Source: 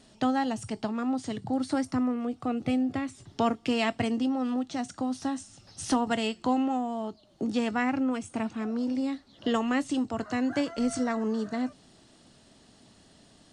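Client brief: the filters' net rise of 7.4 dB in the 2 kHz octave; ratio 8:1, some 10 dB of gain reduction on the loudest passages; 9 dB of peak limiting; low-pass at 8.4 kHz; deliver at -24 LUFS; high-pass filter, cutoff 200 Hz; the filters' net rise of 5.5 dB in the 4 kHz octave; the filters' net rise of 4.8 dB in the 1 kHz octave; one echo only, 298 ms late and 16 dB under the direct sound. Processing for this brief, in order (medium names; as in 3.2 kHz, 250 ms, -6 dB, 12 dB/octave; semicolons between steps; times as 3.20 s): high-pass 200 Hz; low-pass 8.4 kHz; peaking EQ 1 kHz +5 dB; peaking EQ 2 kHz +6.5 dB; peaking EQ 4 kHz +4.5 dB; compression 8:1, threshold -29 dBFS; peak limiter -25 dBFS; delay 298 ms -16 dB; trim +11 dB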